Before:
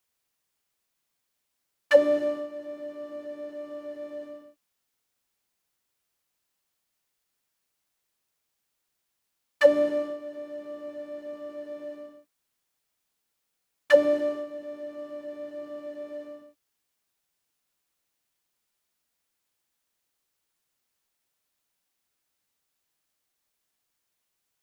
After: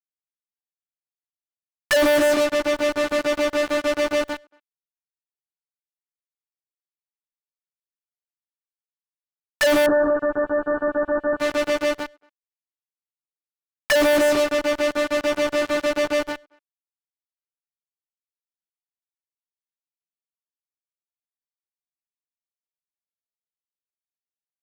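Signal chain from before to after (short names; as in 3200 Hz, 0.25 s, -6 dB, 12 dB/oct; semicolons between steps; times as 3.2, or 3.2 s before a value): fuzz box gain 44 dB, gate -39 dBFS; 9.86–11.4 brick-wall FIR low-pass 1800 Hz; speakerphone echo 0.23 s, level -28 dB; gain -2.5 dB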